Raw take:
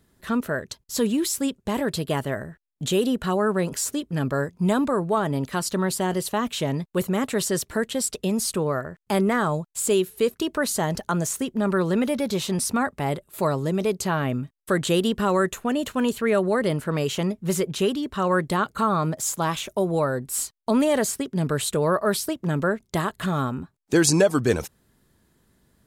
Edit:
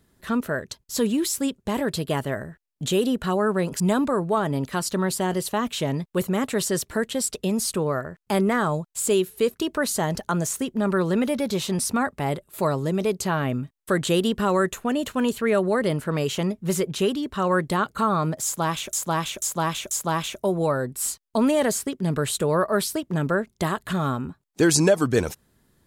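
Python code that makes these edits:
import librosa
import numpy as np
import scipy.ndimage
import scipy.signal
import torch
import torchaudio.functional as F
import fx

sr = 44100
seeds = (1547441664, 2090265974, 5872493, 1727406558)

y = fx.edit(x, sr, fx.cut(start_s=3.8, length_s=0.8),
    fx.repeat(start_s=19.24, length_s=0.49, count=4), tone=tone)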